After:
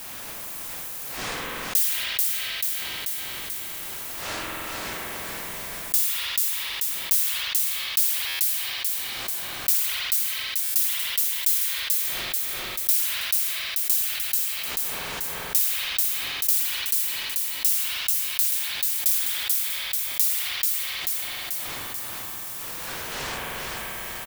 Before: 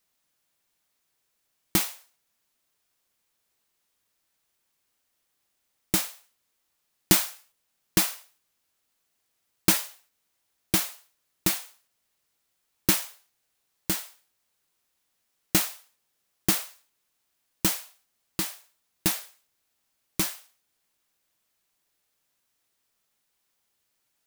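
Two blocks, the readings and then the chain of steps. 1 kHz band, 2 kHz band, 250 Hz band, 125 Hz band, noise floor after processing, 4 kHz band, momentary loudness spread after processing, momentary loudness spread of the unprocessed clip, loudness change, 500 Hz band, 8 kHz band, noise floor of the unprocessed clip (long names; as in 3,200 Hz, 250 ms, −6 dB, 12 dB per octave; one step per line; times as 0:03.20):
+4.5 dB, +7.5 dB, −11.0 dB, can't be measured, −35 dBFS, +7.5 dB, 11 LU, 13 LU, +3.0 dB, +0.5 dB, +6.0 dB, −76 dBFS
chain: wind on the microphone 470 Hz −42 dBFS
first difference
automatic gain control gain up to 5 dB
guitar amp tone stack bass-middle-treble 5-5-5
on a send: repeating echo 437 ms, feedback 30%, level −7 dB
on the sum: spring reverb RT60 3 s, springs 45 ms, chirp 40 ms, DRR 0.5 dB
frequency shifter −270 Hz
buffer that repeats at 0:08.27/0:10.63, samples 512, times 10
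envelope flattener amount 70%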